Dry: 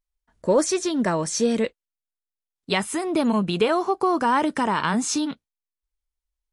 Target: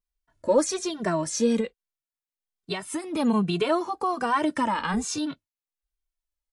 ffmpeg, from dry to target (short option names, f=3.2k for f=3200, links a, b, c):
-filter_complex "[0:a]asettb=1/sr,asplit=3[a][b][c];[a]atrim=end=1.604[d];[b]atrim=start=1.6:end=3.04,asetpts=PTS-STARTPTS,afade=t=in:d=0.004:c=qsin,afade=t=out:st=1.436:d=0.004:c=qsin,acompressor=threshold=-25dB:ratio=6[e];[c]atrim=start=3.036[f];[d][e]acrossfade=d=0.004:c1=hsin:c2=qsin[g];[g][f]acrossfade=d=0.004:c1=qsin:c2=hsin,asettb=1/sr,asplit=3[h][i][j];[h]atrim=end=4.744[k];[i]atrim=start=4.74:end=5.18,asetpts=PTS-STARTPTS,afade=t=in:d=0.004:c=qsin,afade=t=out:st=0.436:d=0.004:c=qsin,tremolo=f=190:d=0.462[l];[j]atrim=start=5.176[m];[k][l]acrossfade=d=0.004:c1=hsin:c2=qsin[n];[n][m]acrossfade=d=0.004:c1=qsin:c2=hsin,asplit=2[o][p];[p]adelay=2.1,afreqshift=-1.2[q];[o][q]amix=inputs=2:normalize=1"